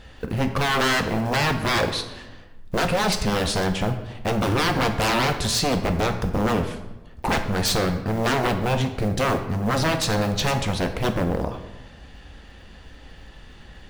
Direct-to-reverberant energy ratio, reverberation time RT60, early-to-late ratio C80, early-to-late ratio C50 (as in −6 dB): 6.0 dB, 1.1 s, 11.5 dB, 9.5 dB